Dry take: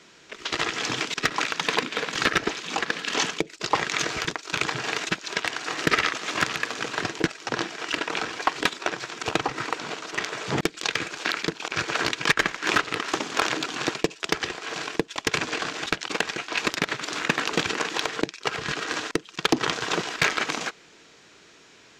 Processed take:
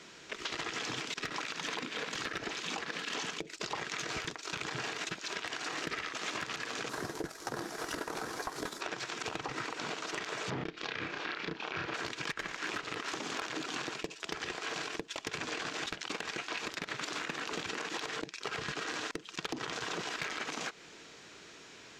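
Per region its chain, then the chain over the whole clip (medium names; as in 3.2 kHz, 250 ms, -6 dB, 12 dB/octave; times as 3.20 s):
6.89–8.81 s: CVSD coder 64 kbps + peaking EQ 2.7 kHz -12.5 dB 1 oct + doubling 14 ms -13.5 dB
10.50–11.94 s: distance through air 210 m + doubling 31 ms -2.5 dB
whole clip: peak limiter -20 dBFS; compression 4:1, threshold -35 dBFS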